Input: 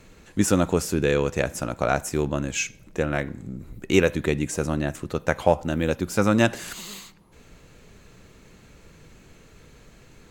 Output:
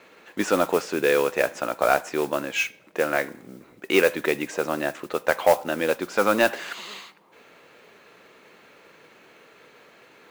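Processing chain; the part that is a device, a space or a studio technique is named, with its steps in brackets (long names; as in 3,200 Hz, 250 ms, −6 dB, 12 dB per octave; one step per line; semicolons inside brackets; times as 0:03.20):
carbon microphone (band-pass filter 460–3,300 Hz; soft clipping −12 dBFS, distortion −17 dB; noise that follows the level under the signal 18 dB)
level +5.5 dB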